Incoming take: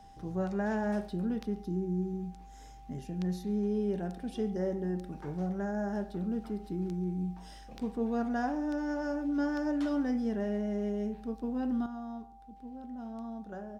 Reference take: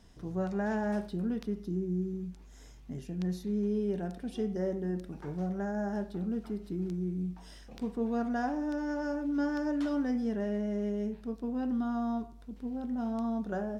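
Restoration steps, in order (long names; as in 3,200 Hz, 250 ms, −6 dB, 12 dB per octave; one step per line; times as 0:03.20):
notch filter 790 Hz, Q 30
echo removal 138 ms −23 dB
level correction +8.5 dB, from 0:11.86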